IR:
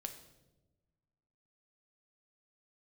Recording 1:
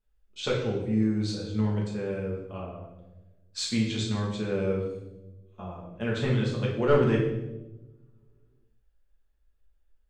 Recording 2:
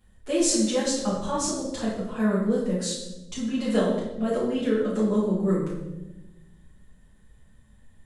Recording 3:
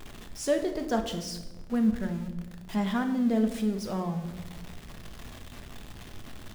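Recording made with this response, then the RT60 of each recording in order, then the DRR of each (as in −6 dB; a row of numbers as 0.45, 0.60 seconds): 3; 1.1, 1.0, 1.1 seconds; −4.0, −9.0, 5.5 decibels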